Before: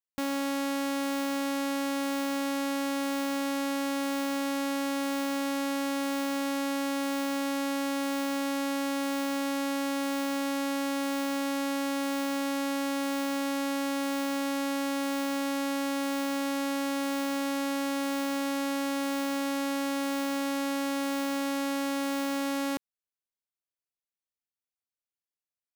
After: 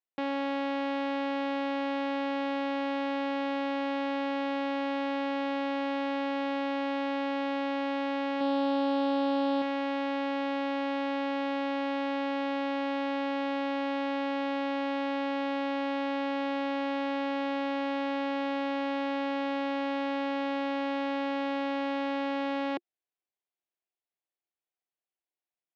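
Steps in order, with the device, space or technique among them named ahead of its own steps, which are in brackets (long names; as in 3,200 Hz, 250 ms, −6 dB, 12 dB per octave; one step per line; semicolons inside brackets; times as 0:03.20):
kitchen radio (loudspeaker in its box 220–3,500 Hz, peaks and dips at 240 Hz −6 dB, 350 Hz +8 dB, 720 Hz +7 dB, 1,300 Hz −4 dB)
0:08.40–0:09.62: comb filter 7 ms, depth 70%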